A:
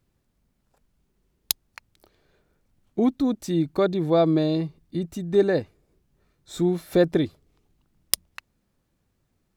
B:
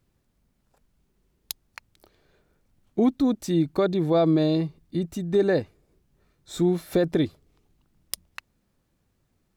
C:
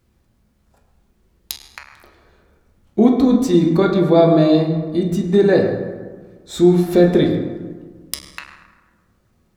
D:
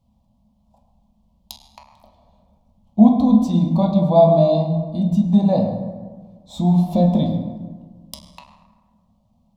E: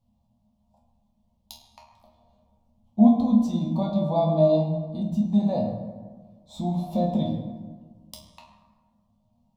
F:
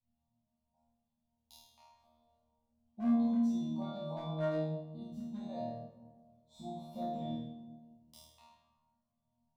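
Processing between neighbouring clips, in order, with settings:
brickwall limiter −13.5 dBFS, peak gain reduction 10.5 dB; level +1 dB
convolution reverb RT60 1.5 s, pre-delay 7 ms, DRR −0.5 dB; level +5.5 dB
drawn EQ curve 140 Hz 0 dB, 220 Hz +8 dB, 390 Hz −24 dB, 600 Hz +5 dB, 1,000 Hz +4 dB, 1,500 Hz −29 dB, 3,200 Hz −4 dB, 8,700 Hz −10 dB; level −2 dB
resonators tuned to a chord D#2 sus4, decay 0.25 s; level +4 dB
dynamic equaliser 1,800 Hz, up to +5 dB, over −44 dBFS, Q 1.3; gain into a clipping stage and back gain 15 dB; resonators tuned to a chord D#2 fifth, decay 0.52 s; level −4.5 dB

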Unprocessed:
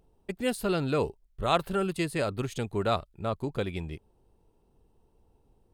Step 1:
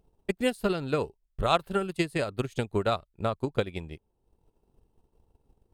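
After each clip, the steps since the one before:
transient designer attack +10 dB, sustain −6 dB
level −3.5 dB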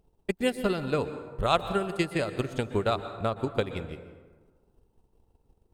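dense smooth reverb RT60 1.4 s, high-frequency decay 0.5×, pre-delay 110 ms, DRR 10.5 dB

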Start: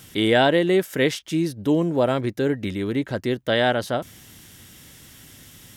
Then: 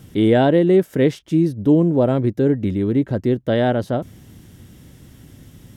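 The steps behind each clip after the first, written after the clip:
tilt shelving filter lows +8.5 dB, about 770 Hz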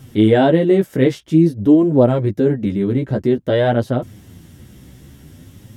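flanger 0.51 Hz, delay 7.4 ms, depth 9.1 ms, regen +3%
level +5 dB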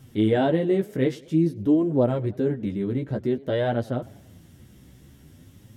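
feedback echo with a swinging delay time 98 ms, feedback 54%, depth 168 cents, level −23 dB
level −8.5 dB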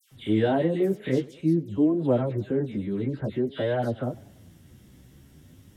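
all-pass dispersion lows, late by 116 ms, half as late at 2,100 Hz
level −2 dB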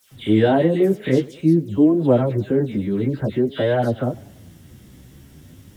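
bit-depth reduction 12 bits, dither triangular
level +7 dB

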